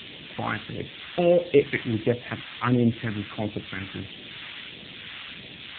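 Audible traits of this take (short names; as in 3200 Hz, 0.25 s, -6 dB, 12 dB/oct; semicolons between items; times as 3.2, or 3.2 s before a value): a quantiser's noise floor 6-bit, dither triangular; phasing stages 2, 1.5 Hz, lowest notch 510–1100 Hz; AMR-NB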